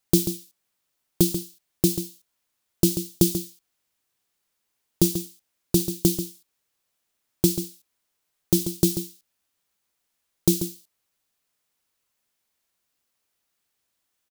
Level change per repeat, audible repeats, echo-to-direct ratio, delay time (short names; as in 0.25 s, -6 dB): no steady repeat, 1, -10.0 dB, 0.138 s